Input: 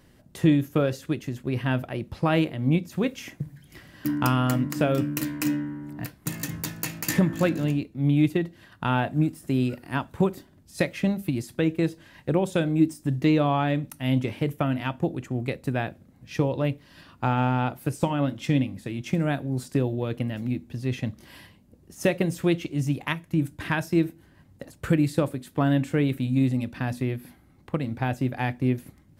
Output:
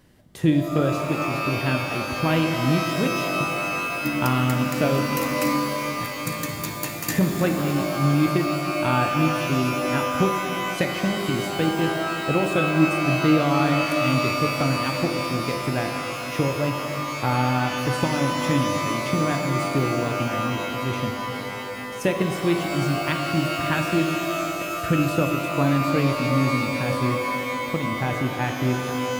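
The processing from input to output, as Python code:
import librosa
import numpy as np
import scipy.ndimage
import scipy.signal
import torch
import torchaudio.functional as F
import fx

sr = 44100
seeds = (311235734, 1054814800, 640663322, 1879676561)

y = fx.rev_shimmer(x, sr, seeds[0], rt60_s=3.5, semitones=12, shimmer_db=-2, drr_db=4.5)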